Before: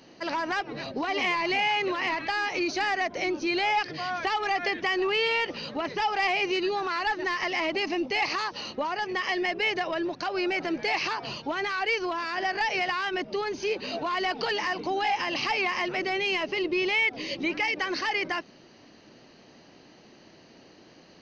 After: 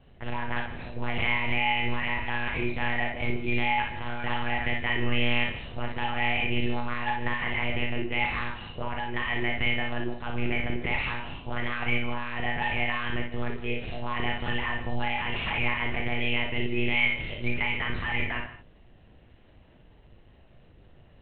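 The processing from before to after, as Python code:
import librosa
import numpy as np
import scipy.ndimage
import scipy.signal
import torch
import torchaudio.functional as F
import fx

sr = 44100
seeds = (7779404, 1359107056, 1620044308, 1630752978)

y = fx.dynamic_eq(x, sr, hz=2100.0, q=1.2, threshold_db=-40.0, ratio=4.0, max_db=6)
y = fx.lpc_monotone(y, sr, seeds[0], pitch_hz=120.0, order=8)
y = fx.low_shelf(y, sr, hz=170.0, db=8.5)
y = fx.room_early_taps(y, sr, ms=(38, 58), db=(-7.5, -4.5))
y = fx.rev_gated(y, sr, seeds[1], gate_ms=180, shape='rising', drr_db=11.5)
y = y * 10.0 ** (-7.5 / 20.0)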